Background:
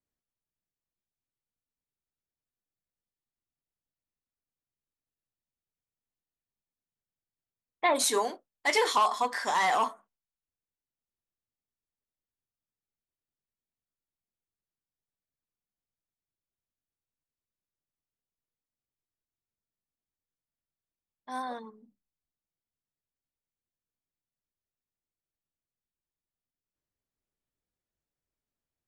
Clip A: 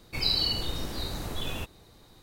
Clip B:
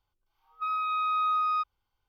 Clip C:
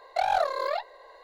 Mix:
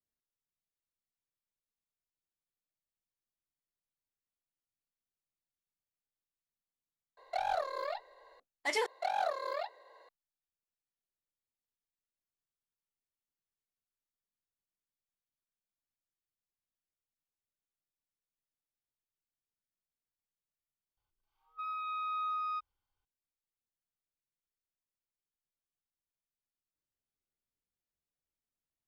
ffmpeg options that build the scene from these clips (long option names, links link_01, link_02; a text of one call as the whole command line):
ffmpeg -i bed.wav -i cue0.wav -i cue1.wav -i cue2.wav -filter_complex "[3:a]asplit=2[link_01][link_02];[0:a]volume=-7dB[link_03];[link_02]highpass=frequency=160:width=0.5412,highpass=frequency=160:width=1.3066[link_04];[link_03]asplit=4[link_05][link_06][link_07][link_08];[link_05]atrim=end=7.174[link_09];[link_01]atrim=end=1.23,asetpts=PTS-STARTPTS,volume=-9dB[link_10];[link_06]atrim=start=8.396:end=8.864[link_11];[link_04]atrim=end=1.23,asetpts=PTS-STARTPTS,volume=-8.5dB[link_12];[link_07]atrim=start=10.086:end=20.974[link_13];[2:a]atrim=end=2.08,asetpts=PTS-STARTPTS,volume=-9dB[link_14];[link_08]atrim=start=23.046[link_15];[link_09][link_10]acrossfade=duration=0.004:curve1=hsin:curve2=hsin[link_16];[link_16][link_11]acrossfade=duration=0.004:curve1=hsin:curve2=hsin[link_17];[link_17][link_12]acrossfade=duration=0.004:curve1=hsin:curve2=hsin[link_18];[link_18][link_13]acrossfade=duration=0.004:curve1=hsin:curve2=hsin[link_19];[link_19][link_14]acrossfade=duration=0.004:curve1=hsin:curve2=hsin[link_20];[link_20][link_15]acrossfade=duration=0.004:curve1=hsin:curve2=hsin" out.wav